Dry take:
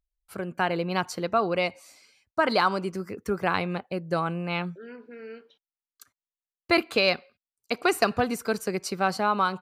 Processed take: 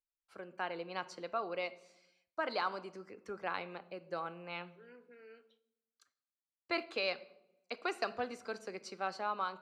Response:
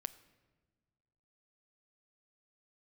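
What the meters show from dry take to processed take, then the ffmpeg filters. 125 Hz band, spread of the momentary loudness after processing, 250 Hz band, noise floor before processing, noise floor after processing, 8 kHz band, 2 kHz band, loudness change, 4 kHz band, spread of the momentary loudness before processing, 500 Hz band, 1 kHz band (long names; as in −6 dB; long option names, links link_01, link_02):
−22.5 dB, 21 LU, −18.0 dB, below −85 dBFS, below −85 dBFS, below −15 dB, −12.5 dB, −13.0 dB, −13.0 dB, 13 LU, −13.0 dB, −12.5 dB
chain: -filter_complex "[0:a]acrossover=split=310 7100:gain=0.224 1 0.0631[link_01][link_02][link_03];[link_01][link_02][link_03]amix=inputs=3:normalize=0[link_04];[1:a]atrim=start_sample=2205,asetrate=83790,aresample=44100[link_05];[link_04][link_05]afir=irnorm=-1:irlink=0,volume=-4dB"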